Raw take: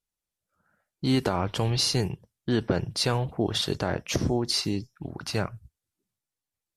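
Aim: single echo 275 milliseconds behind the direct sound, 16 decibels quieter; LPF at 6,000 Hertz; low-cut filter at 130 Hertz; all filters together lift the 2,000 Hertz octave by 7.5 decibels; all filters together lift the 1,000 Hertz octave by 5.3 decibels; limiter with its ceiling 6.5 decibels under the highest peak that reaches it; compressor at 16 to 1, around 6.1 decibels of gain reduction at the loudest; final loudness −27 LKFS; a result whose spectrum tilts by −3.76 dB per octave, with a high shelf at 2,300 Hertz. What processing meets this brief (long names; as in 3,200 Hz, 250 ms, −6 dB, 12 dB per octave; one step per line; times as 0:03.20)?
high-pass filter 130 Hz
low-pass filter 6,000 Hz
parametric band 1,000 Hz +4.5 dB
parametric band 2,000 Hz +4.5 dB
high-shelf EQ 2,300 Hz +7.5 dB
downward compressor 16 to 1, threshold −23 dBFS
brickwall limiter −18 dBFS
single-tap delay 275 ms −16 dB
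level +4 dB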